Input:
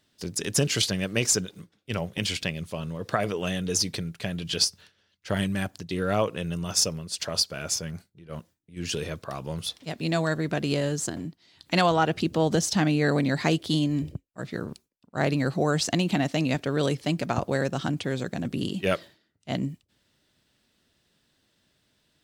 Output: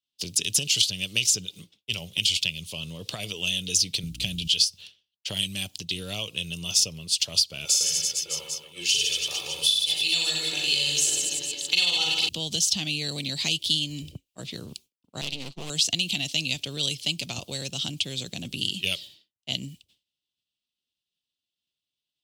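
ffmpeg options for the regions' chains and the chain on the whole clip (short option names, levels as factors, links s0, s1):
-filter_complex "[0:a]asettb=1/sr,asplit=3[s0][s1][s2];[s0]atrim=end=4.034[s3];[s1]atrim=start=4.03:end=4.48,asetpts=PTS-STARTPTS,afade=t=in:d=0.004:c=qsin,afade=t=out:st=0.446:d=0.004:c=qsin,bass=f=250:g=14,treble=f=4000:g=3,aeval=exprs='val(0)+0.0224*(sin(2*PI*60*n/s)+sin(2*PI*2*60*n/s)/2+sin(2*PI*3*60*n/s)/3+sin(2*PI*4*60*n/s)/4+sin(2*PI*5*60*n/s)/5)':c=same[s4];[s2]atrim=start=4.476[s5];[s3][s4]acrossfade=d=0.004:c1=hsin:c2=qsin[s6];[s6][s5]acrossfade=d=0.004:c1=qsin:c2=hsin,asettb=1/sr,asplit=3[s7][s8][s9];[s7]atrim=end=7.654[s10];[s8]atrim=start=7.65:end=12.29,asetpts=PTS-STARTPTS,afade=t=in:d=0.004:c=qsin,afade=t=out:st=4.636:d=0.004:c=qsin,highpass=f=690:p=1,aecho=1:1:2.3:0.68,atrim=end_sample=204624,aecho=1:1:40|90|152.5|230.6|328.3|450.4|602.9|793.7:0.794|0.631|0.501|0.398|0.316|0.251|0.2|0.158,atrim=end_sample=204624[s11];[s9]atrim=start=12.286[s12];[s10][s11]acrossfade=d=0.004:c1=hsin:c2=qsin[s13];[s13][s12]acrossfade=d=0.004:c1=qsin:c2=hsin,asettb=1/sr,asplit=3[s14][s15][s16];[s14]atrim=end=15.214[s17];[s15]atrim=start=15.21:end=15.7,asetpts=PTS-STARTPTS,afade=t=in:d=0.004:c=qsin,afade=t=out:st=0.486:d=0.004:c=qsin,agate=range=0.0224:threshold=0.0562:ratio=3:release=100:detection=peak,lowpass=6300,aeval=exprs='max(val(0),0)':c=same[s18];[s16]atrim=start=15.696[s19];[s17][s18]acrossfade=d=0.004:c1=hsin:c2=qsin[s20];[s20][s19]acrossfade=d=0.004:c1=qsin:c2=hsin,agate=range=0.0224:threshold=0.00251:ratio=3:detection=peak,highshelf=f=2200:t=q:w=3:g=10,acrossover=split=150|2900[s21][s22][s23];[s21]acompressor=threshold=0.0126:ratio=4[s24];[s22]acompressor=threshold=0.0141:ratio=4[s25];[s23]acompressor=threshold=0.112:ratio=4[s26];[s24][s25][s26]amix=inputs=3:normalize=0,volume=0.841"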